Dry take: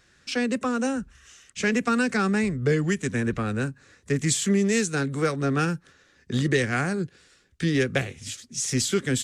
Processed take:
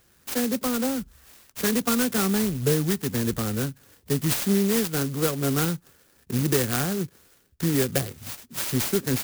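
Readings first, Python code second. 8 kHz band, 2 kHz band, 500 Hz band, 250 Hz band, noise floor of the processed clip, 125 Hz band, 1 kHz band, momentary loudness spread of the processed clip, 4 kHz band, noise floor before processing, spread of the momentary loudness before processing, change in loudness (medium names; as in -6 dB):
+0.5 dB, -5.5 dB, -0.5 dB, 0.0 dB, -61 dBFS, 0.0 dB, -2.5 dB, 10 LU, +1.0 dB, -61 dBFS, 9 LU, +0.5 dB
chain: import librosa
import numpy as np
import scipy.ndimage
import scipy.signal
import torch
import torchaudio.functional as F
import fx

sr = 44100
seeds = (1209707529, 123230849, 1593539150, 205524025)

y = fx.clock_jitter(x, sr, seeds[0], jitter_ms=0.13)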